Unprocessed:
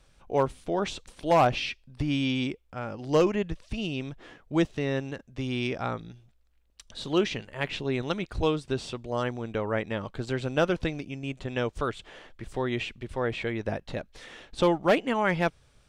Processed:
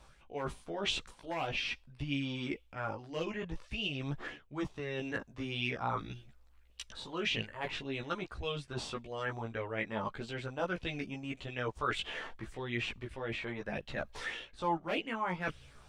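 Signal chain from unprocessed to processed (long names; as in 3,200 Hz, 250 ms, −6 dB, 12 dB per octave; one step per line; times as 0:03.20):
reversed playback
downward compressor 5 to 1, threshold −39 dBFS, peak gain reduction 19 dB
reversed playback
multi-voice chorus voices 2, 0.47 Hz, delay 16 ms, depth 2.5 ms
auto-filter bell 1.7 Hz 880–3,100 Hz +11 dB
level +5 dB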